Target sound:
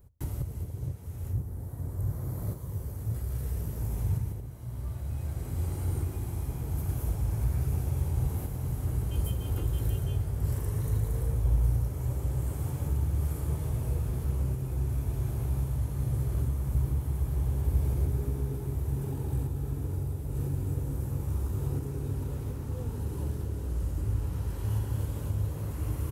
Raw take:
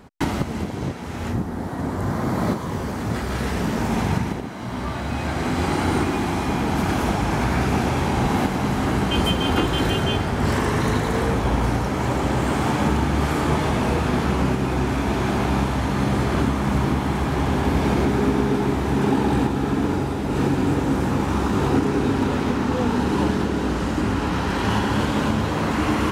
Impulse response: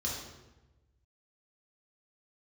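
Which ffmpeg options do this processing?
-filter_complex "[0:a]firequalizer=gain_entry='entry(110,0);entry(210,-22);entry(480,-15);entry(730,-23);entry(1600,-25);entry(3800,-22);entry(12000,3)':delay=0.05:min_phase=1,asplit=2[a][b];[1:a]atrim=start_sample=2205[c];[b][c]afir=irnorm=-1:irlink=0,volume=-22.5dB[d];[a][d]amix=inputs=2:normalize=0,volume=-2dB"

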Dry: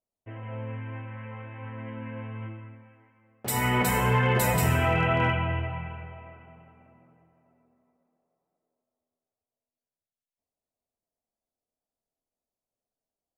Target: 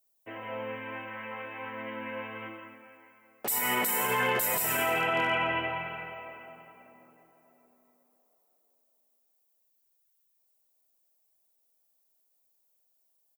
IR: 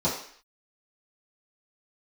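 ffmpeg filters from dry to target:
-filter_complex "[0:a]highpass=220,aemphasis=mode=production:type=bsi,alimiter=level_in=0.5dB:limit=-24dB:level=0:latency=1,volume=-0.5dB,asplit=2[a][b];[b]aecho=0:1:170:0.237[c];[a][c]amix=inputs=2:normalize=0,volume=5dB"

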